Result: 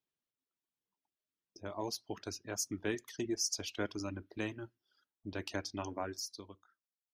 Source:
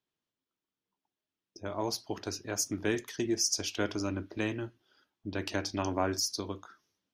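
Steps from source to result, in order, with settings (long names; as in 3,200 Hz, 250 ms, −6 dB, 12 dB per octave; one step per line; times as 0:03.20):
fade-out on the ending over 1.59 s
reverb reduction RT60 0.86 s
level −5 dB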